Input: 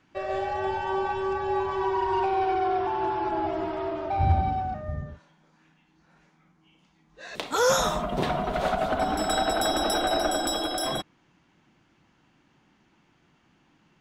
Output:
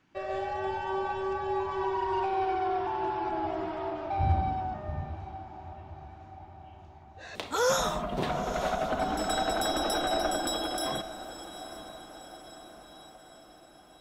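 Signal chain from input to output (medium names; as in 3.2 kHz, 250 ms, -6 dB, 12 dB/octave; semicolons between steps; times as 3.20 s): echo that smears into a reverb 882 ms, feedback 57%, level -13.5 dB; trim -4 dB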